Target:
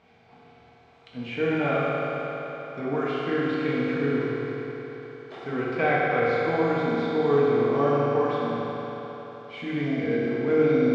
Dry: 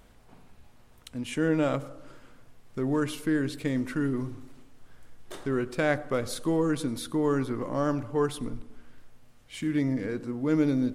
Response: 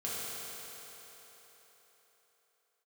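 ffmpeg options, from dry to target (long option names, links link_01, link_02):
-filter_complex "[0:a]acrossover=split=3500[link_01][link_02];[link_02]acompressor=threshold=-52dB:ratio=4:attack=1:release=60[link_03];[link_01][link_03]amix=inputs=2:normalize=0,highpass=120,equalizer=frequency=220:width_type=q:width=4:gain=-4,equalizer=frequency=810:width_type=q:width=4:gain=8,equalizer=frequency=2300:width_type=q:width=4:gain=8,lowpass=frequency=5000:width=0.5412,lowpass=frequency=5000:width=1.3066[link_04];[1:a]atrim=start_sample=2205[link_05];[link_04][link_05]afir=irnorm=-1:irlink=0"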